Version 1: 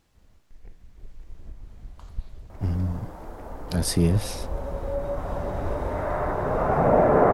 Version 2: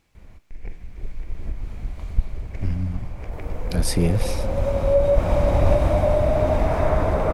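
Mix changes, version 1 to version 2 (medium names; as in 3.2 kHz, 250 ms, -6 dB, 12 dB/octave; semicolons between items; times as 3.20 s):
first sound +12.0 dB; second sound: entry +0.70 s; master: add peaking EQ 2.3 kHz +8.5 dB 0.32 oct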